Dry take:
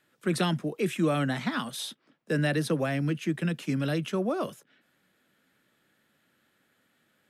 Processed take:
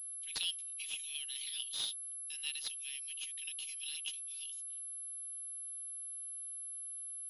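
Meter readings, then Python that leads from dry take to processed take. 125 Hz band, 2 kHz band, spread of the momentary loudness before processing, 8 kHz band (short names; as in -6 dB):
under -40 dB, -13.0 dB, 6 LU, +7.5 dB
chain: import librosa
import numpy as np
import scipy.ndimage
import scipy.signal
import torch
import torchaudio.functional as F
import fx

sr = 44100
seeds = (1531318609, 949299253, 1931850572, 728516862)

y = scipy.signal.sosfilt(scipy.signal.ellip(4, 1.0, 60, 2900.0, 'highpass', fs=sr, output='sos'), x)
y = fx.pwm(y, sr, carrier_hz=11000.0)
y = F.gain(torch.from_numpy(y), 1.5).numpy()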